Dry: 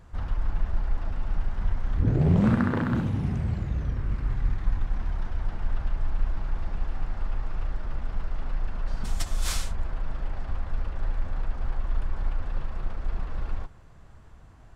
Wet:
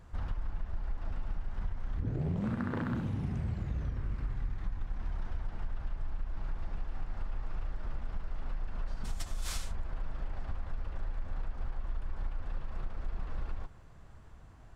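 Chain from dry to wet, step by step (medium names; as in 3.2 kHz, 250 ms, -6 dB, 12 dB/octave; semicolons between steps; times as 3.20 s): compression, threshold -27 dBFS, peak gain reduction 11 dB; trim -3 dB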